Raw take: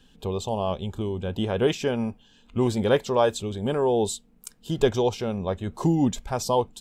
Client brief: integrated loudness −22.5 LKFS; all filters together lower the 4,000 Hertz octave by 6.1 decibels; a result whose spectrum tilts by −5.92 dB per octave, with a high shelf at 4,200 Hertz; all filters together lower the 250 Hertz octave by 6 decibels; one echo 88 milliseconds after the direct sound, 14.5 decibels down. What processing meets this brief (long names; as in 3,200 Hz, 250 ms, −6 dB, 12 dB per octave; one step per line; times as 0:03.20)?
parametric band 250 Hz −8.5 dB
parametric band 4,000 Hz −6 dB
high-shelf EQ 4,200 Hz −4 dB
single-tap delay 88 ms −14.5 dB
level +6 dB